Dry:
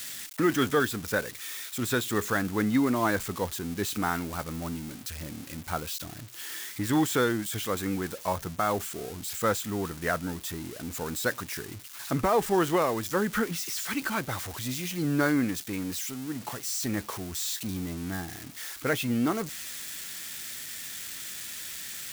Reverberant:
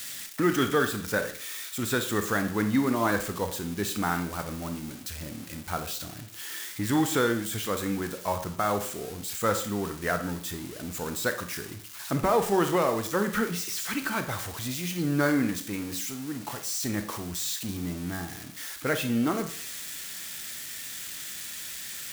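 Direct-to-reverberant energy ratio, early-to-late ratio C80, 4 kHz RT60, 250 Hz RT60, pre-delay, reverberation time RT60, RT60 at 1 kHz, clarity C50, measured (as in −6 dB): 7.5 dB, 14.0 dB, 0.50 s, 0.50 s, 27 ms, 0.50 s, 0.50 s, 10.0 dB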